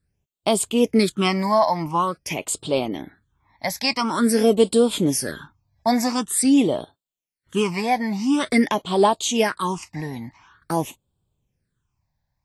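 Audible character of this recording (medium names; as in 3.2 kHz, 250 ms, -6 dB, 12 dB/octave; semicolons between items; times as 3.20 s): phasing stages 8, 0.47 Hz, lowest notch 380–1900 Hz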